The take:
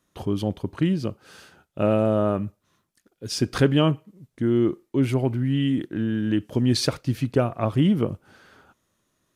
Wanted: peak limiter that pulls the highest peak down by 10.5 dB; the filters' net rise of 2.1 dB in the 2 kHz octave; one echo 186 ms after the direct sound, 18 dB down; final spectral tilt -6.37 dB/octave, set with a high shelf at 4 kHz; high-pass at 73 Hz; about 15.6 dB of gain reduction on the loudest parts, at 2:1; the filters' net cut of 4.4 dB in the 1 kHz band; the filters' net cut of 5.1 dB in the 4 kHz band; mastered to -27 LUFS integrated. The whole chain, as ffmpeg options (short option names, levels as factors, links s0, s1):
-af "highpass=73,equalizer=f=1000:t=o:g=-8.5,equalizer=f=2000:t=o:g=8.5,highshelf=f=4000:g=-3.5,equalizer=f=4000:t=o:g=-7.5,acompressor=threshold=0.00562:ratio=2,alimiter=level_in=2.51:limit=0.0631:level=0:latency=1,volume=0.398,aecho=1:1:186:0.126,volume=6.31"